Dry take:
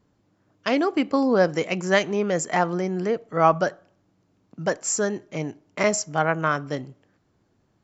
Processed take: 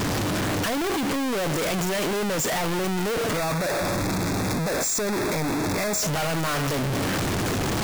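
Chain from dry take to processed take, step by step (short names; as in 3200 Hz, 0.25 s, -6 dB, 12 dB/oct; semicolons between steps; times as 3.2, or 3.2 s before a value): infinite clipping; 3.37–6.02 Butterworth band-stop 3000 Hz, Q 4.1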